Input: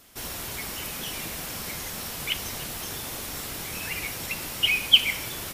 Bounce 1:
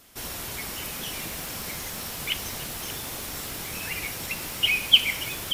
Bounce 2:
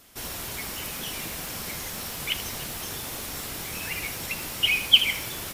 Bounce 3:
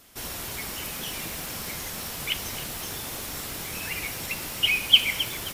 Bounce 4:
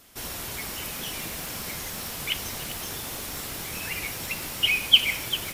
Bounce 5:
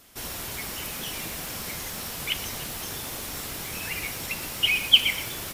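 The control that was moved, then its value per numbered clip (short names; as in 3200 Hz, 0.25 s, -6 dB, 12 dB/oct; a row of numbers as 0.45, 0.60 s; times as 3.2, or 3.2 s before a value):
lo-fi delay, time: 580, 80, 265, 395, 121 ms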